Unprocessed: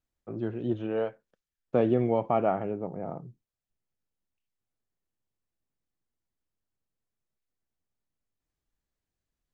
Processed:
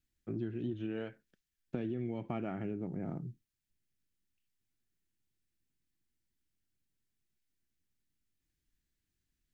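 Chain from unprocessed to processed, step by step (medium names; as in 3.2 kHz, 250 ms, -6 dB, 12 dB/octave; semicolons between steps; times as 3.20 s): high-order bell 750 Hz -13 dB; peak limiter -21.5 dBFS, peak gain reduction 5 dB; compression, threshold -37 dBFS, peak gain reduction 11 dB; trim +3 dB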